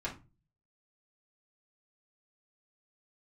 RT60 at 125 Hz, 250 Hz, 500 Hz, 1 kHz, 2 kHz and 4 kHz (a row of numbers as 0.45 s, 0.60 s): 0.65 s, 0.45 s, 0.30 s, 0.30 s, 0.25 s, 0.20 s